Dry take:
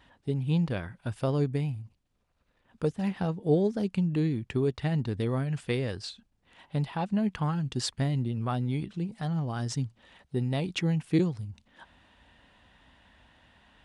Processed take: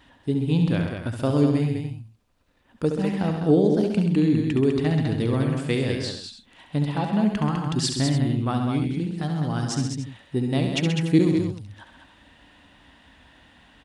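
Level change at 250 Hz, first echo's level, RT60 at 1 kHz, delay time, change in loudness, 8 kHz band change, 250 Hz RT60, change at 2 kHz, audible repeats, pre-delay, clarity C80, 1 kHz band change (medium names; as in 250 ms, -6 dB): +8.0 dB, -7.0 dB, no reverb, 69 ms, +6.5 dB, +8.5 dB, no reverb, +6.5 dB, 4, no reverb, no reverb, +5.5 dB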